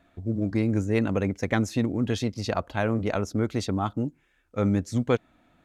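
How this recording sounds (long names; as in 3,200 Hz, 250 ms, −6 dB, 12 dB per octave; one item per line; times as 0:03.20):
background noise floor −66 dBFS
spectral slope −6.0 dB per octave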